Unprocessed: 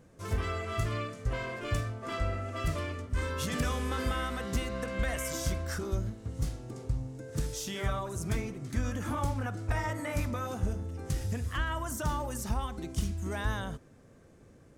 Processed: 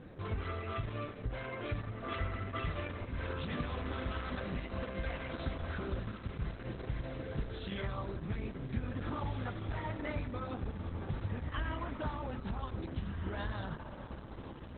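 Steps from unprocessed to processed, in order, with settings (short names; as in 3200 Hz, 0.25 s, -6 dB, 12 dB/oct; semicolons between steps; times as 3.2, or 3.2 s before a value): 2.12–2.87 dynamic EQ 2100 Hz, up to +5 dB, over -51 dBFS, Q 0.82; compressor 2.5:1, threshold -49 dBFS, peak gain reduction 16 dB; diffused feedback echo 1.8 s, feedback 41%, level -7 dB; gain +8.5 dB; Opus 8 kbps 48000 Hz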